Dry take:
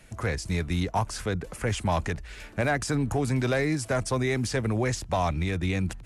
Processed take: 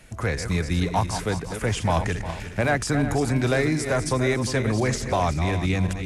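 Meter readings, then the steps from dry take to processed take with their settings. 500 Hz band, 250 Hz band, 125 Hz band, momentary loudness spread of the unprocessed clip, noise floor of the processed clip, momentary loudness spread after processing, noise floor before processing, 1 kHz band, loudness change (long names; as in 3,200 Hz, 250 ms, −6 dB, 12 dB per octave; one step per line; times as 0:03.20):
+4.0 dB, +4.0 dB, +3.5 dB, 5 LU, −35 dBFS, 5 LU, −44 dBFS, +4.0 dB, +4.0 dB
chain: feedback delay that plays each chunk backwards 178 ms, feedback 59%, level −8.5 dB
level +3 dB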